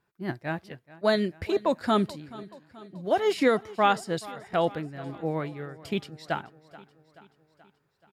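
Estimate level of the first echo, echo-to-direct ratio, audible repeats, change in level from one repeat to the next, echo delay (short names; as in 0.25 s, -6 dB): -19.5 dB, -17.5 dB, 4, -4.5 dB, 0.43 s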